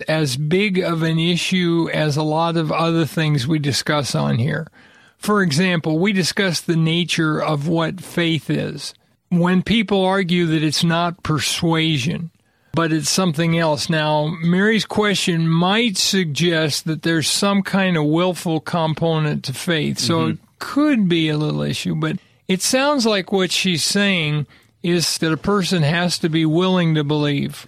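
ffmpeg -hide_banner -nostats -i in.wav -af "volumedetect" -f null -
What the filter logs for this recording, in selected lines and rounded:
mean_volume: -18.5 dB
max_volume: -3.8 dB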